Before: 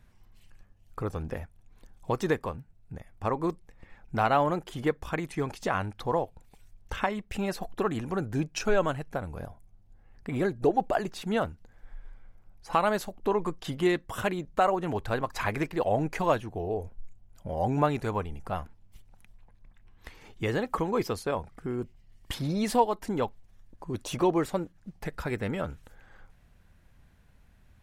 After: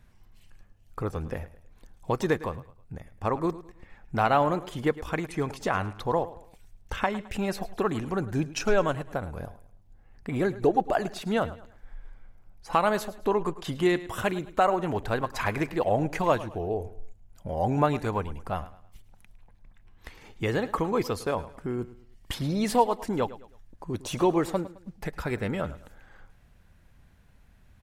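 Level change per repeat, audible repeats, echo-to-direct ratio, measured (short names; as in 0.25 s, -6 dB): -9.0 dB, 3, -16.0 dB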